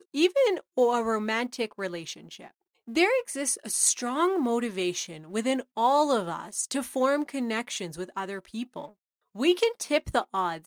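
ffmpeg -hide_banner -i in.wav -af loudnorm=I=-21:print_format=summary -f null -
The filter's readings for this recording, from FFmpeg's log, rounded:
Input Integrated:    -27.5 LUFS
Input True Peak:      -9.9 dBTP
Input LRA:             3.8 LU
Input Threshold:     -38.1 LUFS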